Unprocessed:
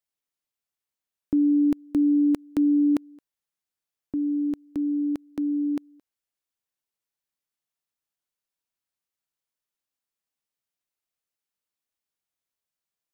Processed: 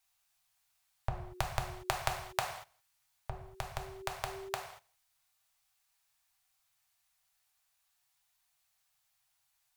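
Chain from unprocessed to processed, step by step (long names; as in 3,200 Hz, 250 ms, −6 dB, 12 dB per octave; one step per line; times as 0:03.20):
gliding playback speed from 121% → 148%
elliptic band-stop filter 130–710 Hz, stop band 80 dB
reverb whose tail is shaped and stops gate 260 ms falling, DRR 1.5 dB
level +12 dB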